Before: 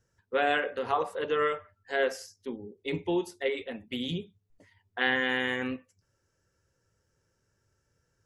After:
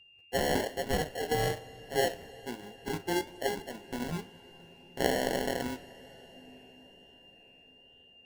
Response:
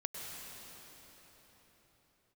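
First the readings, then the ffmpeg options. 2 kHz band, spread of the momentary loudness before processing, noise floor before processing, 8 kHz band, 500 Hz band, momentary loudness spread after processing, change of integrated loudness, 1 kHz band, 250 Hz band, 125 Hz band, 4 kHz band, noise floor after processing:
-7.0 dB, 13 LU, -77 dBFS, +10.0 dB, -1.5 dB, 21 LU, -2.5 dB, -2.5 dB, -1.0 dB, +3.5 dB, -1.0 dB, -59 dBFS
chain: -filter_complex "[0:a]lowpass=8k,asplit=2[a][b];[b]aeval=exprs='sgn(val(0))*max(abs(val(0))-0.0106,0)':c=same,volume=-4dB[c];[a][c]amix=inputs=2:normalize=0,acrusher=samples=36:mix=1:aa=0.000001,aeval=exprs='val(0)+0.00282*sin(2*PI*2800*n/s)':c=same,flanger=delay=4.6:depth=8.4:regen=69:speed=1.1:shape=sinusoidal,asplit=2[d][e];[1:a]atrim=start_sample=2205,asetrate=29106,aresample=44100[f];[e][f]afir=irnorm=-1:irlink=0,volume=-19.5dB[g];[d][g]amix=inputs=2:normalize=0,volume=-2dB"

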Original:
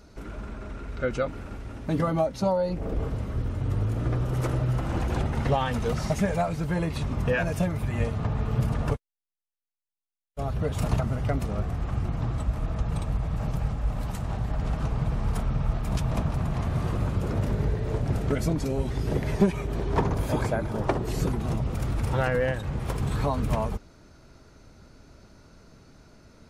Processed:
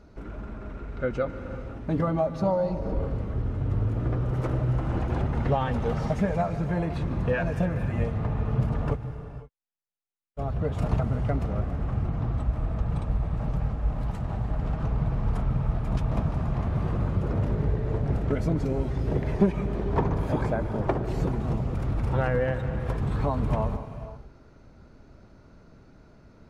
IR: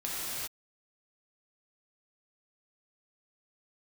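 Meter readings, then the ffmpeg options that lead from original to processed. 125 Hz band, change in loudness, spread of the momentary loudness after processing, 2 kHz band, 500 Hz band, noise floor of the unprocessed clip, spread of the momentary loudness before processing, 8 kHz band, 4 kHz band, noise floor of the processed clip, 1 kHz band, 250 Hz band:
+0.5 dB, 0.0 dB, 6 LU, -3.0 dB, 0.0 dB, under -85 dBFS, 6 LU, under -10 dB, n/a, -54 dBFS, -1.0 dB, +0.5 dB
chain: -filter_complex "[0:a]lowpass=f=1.6k:p=1,asplit=2[a][b];[1:a]atrim=start_sample=2205,asetrate=48510,aresample=44100,adelay=148[c];[b][c]afir=irnorm=-1:irlink=0,volume=-15.5dB[d];[a][d]amix=inputs=2:normalize=0"

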